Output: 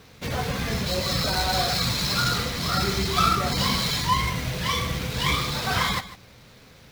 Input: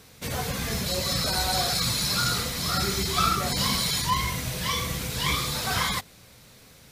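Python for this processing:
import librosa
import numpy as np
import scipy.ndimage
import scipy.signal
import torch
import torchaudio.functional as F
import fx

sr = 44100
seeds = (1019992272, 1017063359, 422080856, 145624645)

y = scipy.signal.medfilt(x, 5)
y = y + 10.0 ** (-15.5 / 20.0) * np.pad(y, (int(150 * sr / 1000.0), 0))[:len(y)]
y = y * 10.0 ** (3.0 / 20.0)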